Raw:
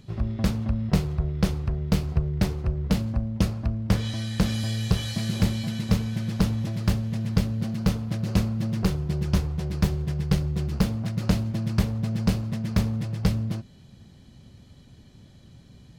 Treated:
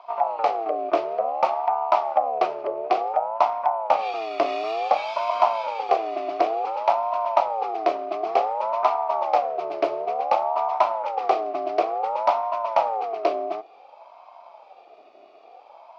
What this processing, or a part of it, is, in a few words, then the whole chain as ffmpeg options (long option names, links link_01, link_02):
voice changer toy: -af "aeval=exprs='val(0)*sin(2*PI*660*n/s+660*0.25/0.56*sin(2*PI*0.56*n/s))':channel_layout=same,highpass=420,equalizer=frequency=470:width_type=q:width=4:gain=-4,equalizer=frequency=720:width_type=q:width=4:gain=6,equalizer=frequency=1200:width_type=q:width=4:gain=10,equalizer=frequency=1700:width_type=q:width=4:gain=-6,equalizer=frequency=2400:width_type=q:width=4:gain=8,equalizer=frequency=3700:width_type=q:width=4:gain=-5,lowpass=frequency=4400:width=0.5412,lowpass=frequency=4400:width=1.3066,volume=2dB"